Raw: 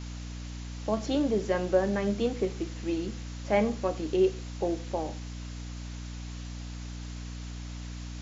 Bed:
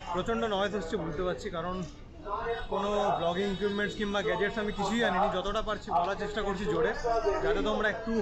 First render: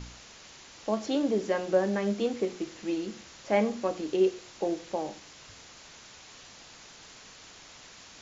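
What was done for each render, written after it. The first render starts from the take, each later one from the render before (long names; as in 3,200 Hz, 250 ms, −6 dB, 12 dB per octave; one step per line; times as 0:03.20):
hum removal 60 Hz, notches 6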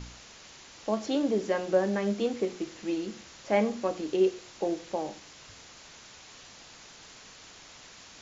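no processing that can be heard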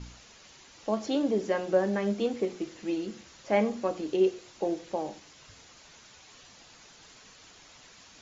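broadband denoise 6 dB, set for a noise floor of −51 dBFS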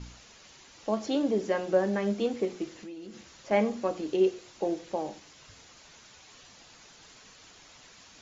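0:02.73–0:03.51: downward compressor, threshold −40 dBFS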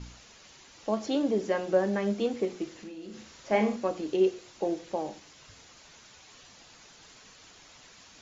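0:02.81–0:03.76: flutter between parallel walls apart 6.4 metres, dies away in 0.36 s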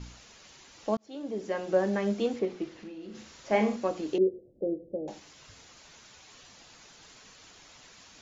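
0:00.97–0:01.83: fade in
0:02.39–0:03.15: high-frequency loss of the air 120 metres
0:04.18–0:05.08: elliptic low-pass filter 550 Hz, stop band 50 dB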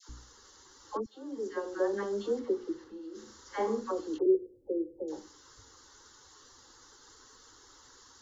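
phaser with its sweep stopped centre 660 Hz, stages 6
all-pass dispersion lows, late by 93 ms, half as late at 830 Hz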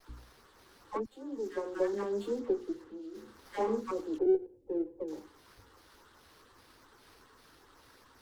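auto-filter notch sine 2.5 Hz 600–6,400 Hz
windowed peak hold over 5 samples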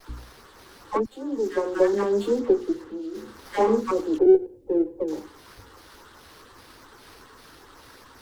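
level +11 dB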